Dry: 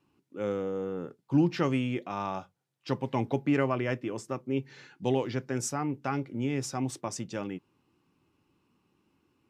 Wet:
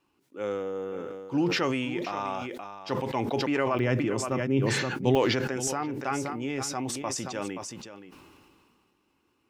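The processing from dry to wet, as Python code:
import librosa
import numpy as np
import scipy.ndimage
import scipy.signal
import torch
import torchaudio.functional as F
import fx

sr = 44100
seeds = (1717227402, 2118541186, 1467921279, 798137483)

y = fx.peak_eq(x, sr, hz=140.0, db=fx.steps((0.0, -11.0), (3.79, 3.5), (5.15, -10.0)), octaves=2.0)
y = y + 10.0 ** (-12.5 / 20.0) * np.pad(y, (int(525 * sr / 1000.0), 0))[:len(y)]
y = fx.sustainer(y, sr, db_per_s=26.0)
y = y * 10.0 ** (2.5 / 20.0)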